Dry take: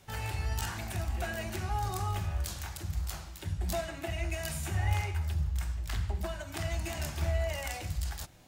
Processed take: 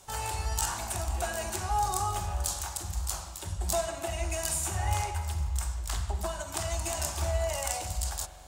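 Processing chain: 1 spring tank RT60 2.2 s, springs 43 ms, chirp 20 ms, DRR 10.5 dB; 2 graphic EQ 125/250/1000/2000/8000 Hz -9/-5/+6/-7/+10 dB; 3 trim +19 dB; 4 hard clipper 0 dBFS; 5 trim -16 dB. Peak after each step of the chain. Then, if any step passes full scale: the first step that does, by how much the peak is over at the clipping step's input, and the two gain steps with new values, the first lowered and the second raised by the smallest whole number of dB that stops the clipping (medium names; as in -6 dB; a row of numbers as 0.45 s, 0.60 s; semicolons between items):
-17.5 dBFS, -14.0 dBFS, +5.0 dBFS, 0.0 dBFS, -16.0 dBFS; step 3, 5.0 dB; step 3 +14 dB, step 5 -11 dB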